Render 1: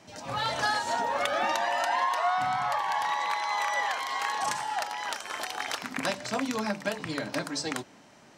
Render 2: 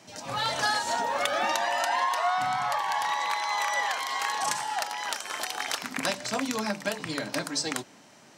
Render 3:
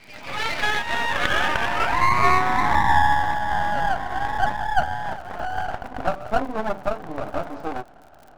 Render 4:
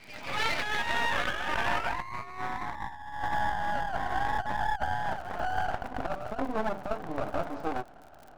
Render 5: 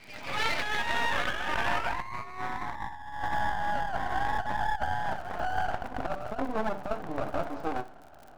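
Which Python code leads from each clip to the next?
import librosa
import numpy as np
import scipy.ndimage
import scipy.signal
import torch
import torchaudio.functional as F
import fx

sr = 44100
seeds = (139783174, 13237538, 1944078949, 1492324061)

y1 = scipy.signal.sosfilt(scipy.signal.butter(2, 89.0, 'highpass', fs=sr, output='sos'), x)
y1 = fx.high_shelf(y1, sr, hz=4000.0, db=6.5)
y2 = fx.filter_sweep_lowpass(y1, sr, from_hz=2300.0, to_hz=740.0, start_s=0.53, end_s=3.35, q=6.0)
y2 = fx.dmg_crackle(y2, sr, seeds[0], per_s=110.0, level_db=-41.0)
y2 = np.maximum(y2, 0.0)
y2 = y2 * librosa.db_to_amplitude(3.5)
y3 = fx.over_compress(y2, sr, threshold_db=-23.0, ratio=-0.5)
y3 = y3 * librosa.db_to_amplitude(-6.0)
y4 = fx.echo_feedback(y3, sr, ms=64, feedback_pct=41, wet_db=-17.0)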